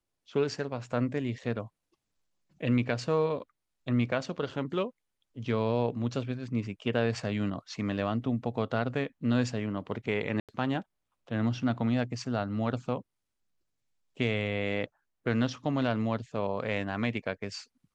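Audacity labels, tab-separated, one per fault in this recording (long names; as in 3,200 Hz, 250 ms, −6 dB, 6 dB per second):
10.400000	10.490000	drop-out 87 ms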